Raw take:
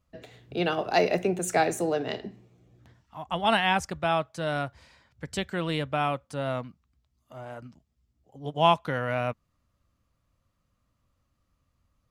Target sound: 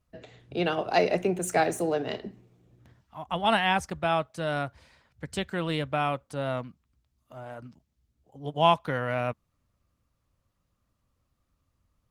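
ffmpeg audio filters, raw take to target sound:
-ar 48000 -c:a libopus -b:a 24k

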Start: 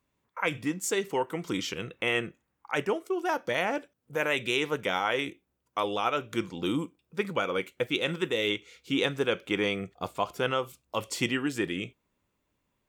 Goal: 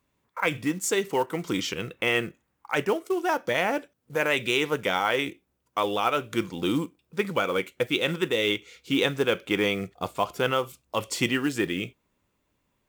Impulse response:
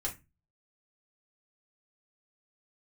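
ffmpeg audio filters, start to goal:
-af "acontrast=80,acrusher=bits=6:mode=log:mix=0:aa=0.000001,volume=0.668"

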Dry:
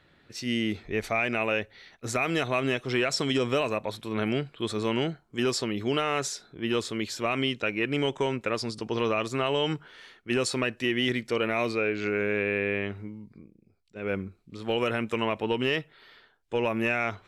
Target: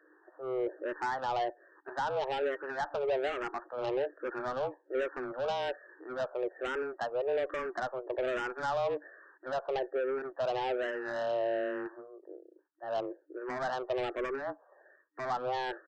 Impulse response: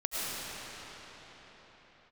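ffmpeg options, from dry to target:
-filter_complex "[0:a]afftfilt=real='re*between(b*sr/4096,160,1600)':imag='im*between(b*sr/4096,160,1600)':win_size=4096:overlap=0.75,afreqshift=120,aresample=16000,asoftclip=type=tanh:threshold=0.0316,aresample=44100,asetrate=48000,aresample=44100,asplit=2[s0][s1];[s1]afreqshift=-1.2[s2];[s0][s2]amix=inputs=2:normalize=1,volume=1.58"

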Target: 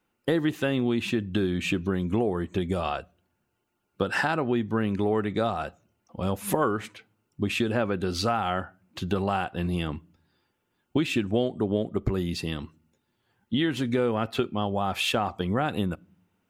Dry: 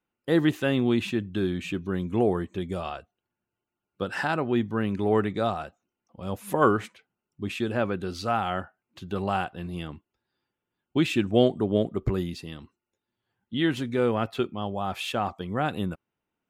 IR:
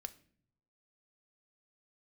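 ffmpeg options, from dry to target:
-filter_complex "[0:a]acompressor=threshold=0.0251:ratio=5,asplit=2[s0][s1];[1:a]atrim=start_sample=2205[s2];[s1][s2]afir=irnorm=-1:irlink=0,volume=0.355[s3];[s0][s3]amix=inputs=2:normalize=0,volume=2.37"

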